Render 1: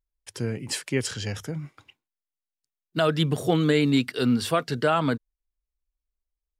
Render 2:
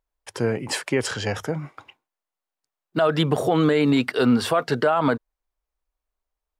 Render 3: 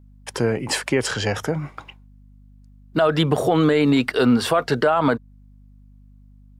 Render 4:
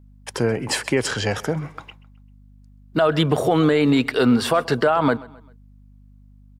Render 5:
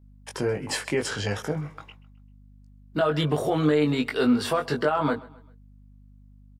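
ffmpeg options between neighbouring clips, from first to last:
-af "equalizer=f=820:t=o:w=2.5:g=14,alimiter=limit=-10.5dB:level=0:latency=1:release=56"
-filter_complex "[0:a]asplit=2[a][b];[b]acompressor=threshold=-29dB:ratio=6,volume=-0.5dB[c];[a][c]amix=inputs=2:normalize=0,aeval=exprs='val(0)+0.00447*(sin(2*PI*50*n/s)+sin(2*PI*2*50*n/s)/2+sin(2*PI*3*50*n/s)/3+sin(2*PI*4*50*n/s)/4+sin(2*PI*5*50*n/s)/5)':c=same"
-af "aecho=1:1:131|262|393:0.0841|0.0353|0.0148"
-filter_complex "[0:a]asplit=2[a][b];[b]adelay=20,volume=-4dB[c];[a][c]amix=inputs=2:normalize=0,volume=-7dB"

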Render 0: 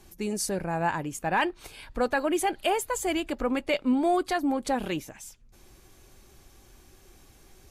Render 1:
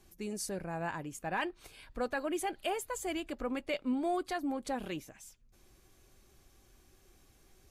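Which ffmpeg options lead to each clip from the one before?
-af "bandreject=f=880:w=12,volume=-8.5dB"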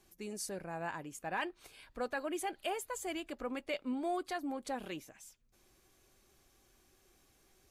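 -af "lowshelf=f=180:g=-8,volume=-2dB"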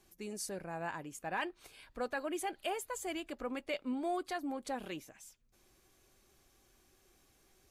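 -af anull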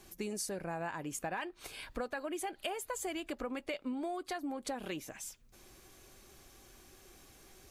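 -af "acompressor=threshold=-45dB:ratio=12,volume=10dB"

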